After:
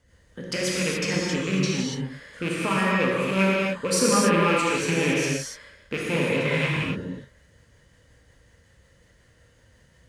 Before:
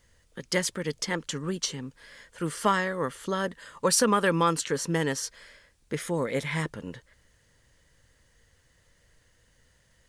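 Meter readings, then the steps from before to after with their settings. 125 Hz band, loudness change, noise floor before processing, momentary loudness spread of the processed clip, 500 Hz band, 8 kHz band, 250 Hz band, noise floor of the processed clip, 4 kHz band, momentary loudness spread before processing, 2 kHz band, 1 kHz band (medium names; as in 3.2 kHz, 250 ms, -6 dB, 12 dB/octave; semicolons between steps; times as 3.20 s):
+6.0 dB, +4.5 dB, -65 dBFS, 13 LU, +4.5 dB, +1.5 dB, +6.5 dB, -59 dBFS, +4.0 dB, 14 LU, +6.5 dB, +1.5 dB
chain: rattle on loud lows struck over -32 dBFS, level -16 dBFS; high-pass 41 Hz; treble shelf 2.8 kHz -8 dB; peak limiter -19 dBFS, peak gain reduction 8.5 dB; rotary cabinet horn 5.5 Hz; gated-style reverb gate 310 ms flat, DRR -5 dB; trim +4.5 dB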